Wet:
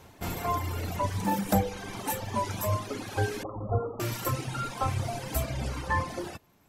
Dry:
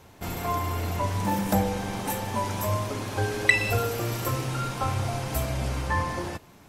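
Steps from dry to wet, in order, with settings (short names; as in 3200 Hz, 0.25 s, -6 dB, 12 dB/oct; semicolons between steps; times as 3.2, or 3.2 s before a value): 3.43–4 Chebyshev low-pass 1300 Hz, order 8; reverb removal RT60 1.6 s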